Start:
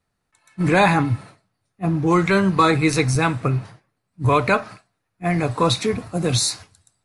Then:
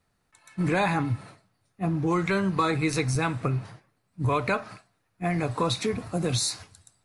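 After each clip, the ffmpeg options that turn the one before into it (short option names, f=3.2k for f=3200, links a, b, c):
-af "acompressor=threshold=-33dB:ratio=2,volume=2.5dB"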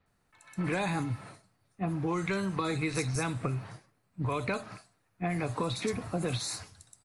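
-filter_complex "[0:a]acrossover=split=560|2900[a][b][c];[a]acompressor=threshold=-31dB:ratio=4[d];[b]acompressor=threshold=-36dB:ratio=4[e];[c]acompressor=threshold=-35dB:ratio=4[f];[d][e][f]amix=inputs=3:normalize=0,acrossover=split=4200[g][h];[h]adelay=60[i];[g][i]amix=inputs=2:normalize=0"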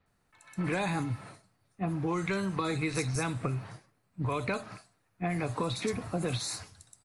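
-af anull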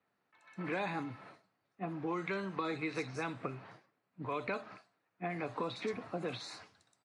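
-af "highpass=240,lowpass=3.6k,volume=-4dB"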